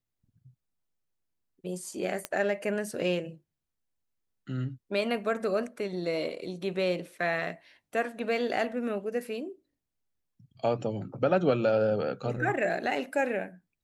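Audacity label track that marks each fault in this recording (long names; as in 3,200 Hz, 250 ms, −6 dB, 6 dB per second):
2.250000	2.250000	click −15 dBFS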